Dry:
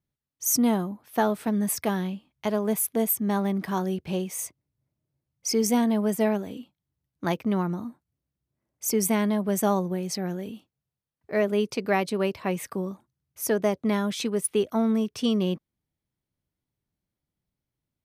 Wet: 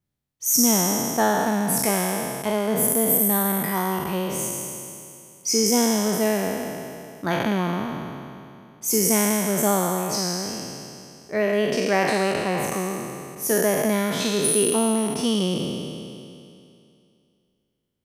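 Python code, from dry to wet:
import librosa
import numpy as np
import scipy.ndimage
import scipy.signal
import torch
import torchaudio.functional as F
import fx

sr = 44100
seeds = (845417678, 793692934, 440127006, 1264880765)

y = fx.spec_trails(x, sr, decay_s=2.51)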